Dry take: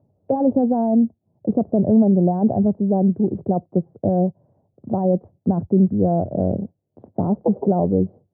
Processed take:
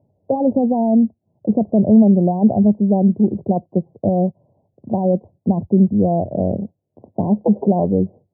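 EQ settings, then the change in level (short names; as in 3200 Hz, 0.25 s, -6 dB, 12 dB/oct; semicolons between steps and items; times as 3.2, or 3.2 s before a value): bell 630 Hz +2.5 dB; dynamic EQ 210 Hz, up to +6 dB, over -30 dBFS, Q 6.8; brick-wall FIR low-pass 1100 Hz; 0.0 dB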